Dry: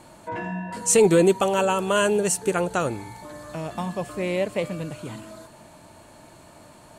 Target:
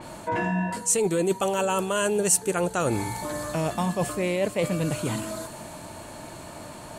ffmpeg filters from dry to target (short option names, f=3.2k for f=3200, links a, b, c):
-af "areverse,acompressor=threshold=-30dB:ratio=8,areverse,adynamicequalizer=threshold=0.00178:dfrequency=5600:dqfactor=0.7:tfrequency=5600:tqfactor=0.7:attack=5:release=100:ratio=0.375:range=3:mode=boostabove:tftype=highshelf,volume=8dB"